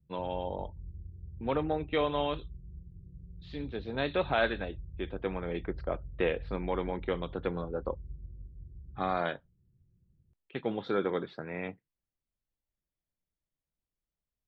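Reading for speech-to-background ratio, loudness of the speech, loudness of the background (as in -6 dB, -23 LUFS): 13.0 dB, -34.5 LUFS, -47.5 LUFS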